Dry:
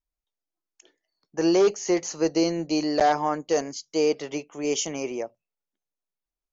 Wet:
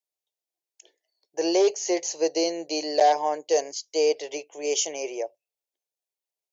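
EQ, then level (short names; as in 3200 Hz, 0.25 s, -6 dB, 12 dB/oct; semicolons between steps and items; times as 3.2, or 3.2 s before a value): HPF 410 Hz 12 dB/oct; dynamic EQ 1200 Hz, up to +4 dB, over -40 dBFS, Q 2.4; fixed phaser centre 530 Hz, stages 4; +3.5 dB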